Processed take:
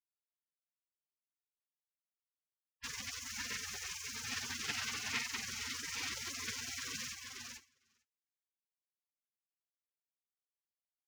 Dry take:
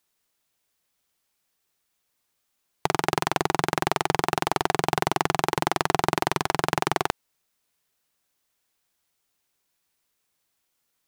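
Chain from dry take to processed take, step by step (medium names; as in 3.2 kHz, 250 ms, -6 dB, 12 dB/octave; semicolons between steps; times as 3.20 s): frequency axis rescaled in octaves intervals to 77%; waveshaping leveller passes 2; treble shelf 5 kHz +2.5 dB; peak limiter -18 dBFS, peak gain reduction 3.5 dB; high-pass 130 Hz 12 dB/octave; feedback delay 451 ms, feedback 22%, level -5 dB; expander -31 dBFS; spectral gate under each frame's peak -25 dB weak; graphic EQ 250/1000/2000/4000 Hz +10/+5/+7/-8 dB; trim +2 dB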